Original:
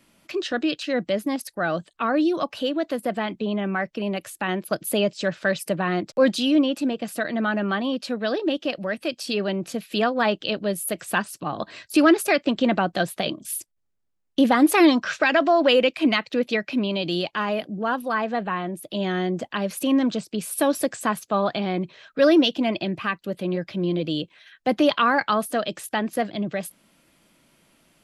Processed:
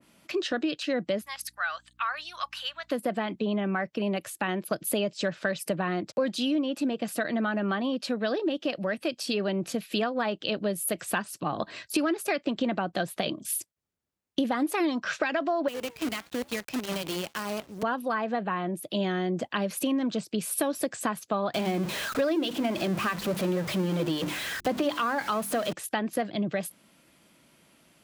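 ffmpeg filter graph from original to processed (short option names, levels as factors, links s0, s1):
-filter_complex "[0:a]asettb=1/sr,asplit=3[s0][s1][s2];[s0]atrim=end=1.214[s3];[s1]atrim=start=1.21:end=2.91,asetpts=PTS-STARTPTS,afade=t=in:d=0.004:c=qsin,afade=t=out:st=1.696:d=0.004:c=qsin,highpass=f=1100:w=0.5412,highpass=f=1100:w=1.3066,aeval=exprs='val(0)+0.000631*(sin(2*PI*60*n/s)+sin(2*PI*2*60*n/s)/2+sin(2*PI*3*60*n/s)/3+sin(2*PI*4*60*n/s)/4+sin(2*PI*5*60*n/s)/5)':c=same[s4];[s2]atrim=start=2.906[s5];[s3][s4]acrossfade=d=0.004:c1=hsin:c2=qsin[s6];[s6][s5]acrossfade=d=0.004:c1=qsin:c2=hsin,asettb=1/sr,asplit=3[s7][s8][s9];[s7]atrim=end=15.684[s10];[s8]atrim=start=15.68:end=17.83,asetpts=PTS-STARTPTS,afade=t=in:d=0.004:c=qsin,afade=t=out:st=2.146:d=0.004:c=qsin,acrossover=split=180|4000[s11][s12][s13];[s11]acompressor=threshold=0.0158:ratio=4[s14];[s12]acompressor=threshold=0.0501:ratio=4[s15];[s13]acompressor=threshold=0.00708:ratio=4[s16];[s14][s15][s16]amix=inputs=3:normalize=0,flanger=delay=4.7:depth=4.8:regen=-89:speed=1.1:shape=triangular,acrusher=bits=6:dc=4:mix=0:aa=0.000001[s17];[s9]atrim=start=17.826[s18];[s10][s17]acrossfade=d=0.004:c1=hsin:c2=qsin[s19];[s19][s18]acrossfade=d=0.004:c1=qsin:c2=hsin,asettb=1/sr,asplit=3[s20][s21][s22];[s20]atrim=end=21.544[s23];[s21]atrim=start=21.54:end=25.73,asetpts=PTS-STARTPTS,afade=t=in:d=0.004:c=qsin,afade=t=out:st=4.186:d=0.004:c=qsin,aeval=exprs='val(0)+0.5*0.0473*sgn(val(0))':c=same,bandreject=f=50:t=h:w=6,bandreject=f=100:t=h:w=6,bandreject=f=150:t=h:w=6,bandreject=f=200:t=h:w=6,bandreject=f=250:t=h:w=6,bandreject=f=300:t=h:w=6,bandreject=f=350:t=h:w=6[s24];[s22]atrim=start=25.726[s25];[s23][s24]acrossfade=d=0.004:c1=hsin:c2=qsin[s26];[s26][s25]acrossfade=d=0.004:c1=qsin:c2=hsin,highpass=58,acompressor=threshold=0.0631:ratio=6,adynamicequalizer=threshold=0.0126:dfrequency=1700:dqfactor=0.7:tfrequency=1700:tqfactor=0.7:attack=5:release=100:ratio=0.375:range=1.5:mode=cutabove:tftype=highshelf"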